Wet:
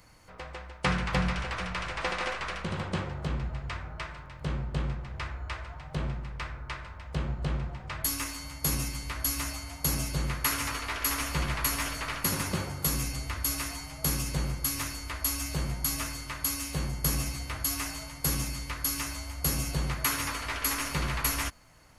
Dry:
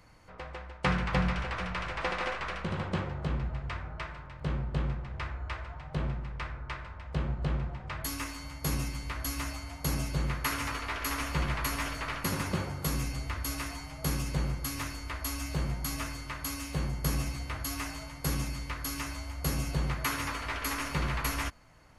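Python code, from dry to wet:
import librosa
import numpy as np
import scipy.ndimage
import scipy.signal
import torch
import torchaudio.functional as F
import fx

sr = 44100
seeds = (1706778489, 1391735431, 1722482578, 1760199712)

y = fx.high_shelf(x, sr, hz=4700.0, db=10.0)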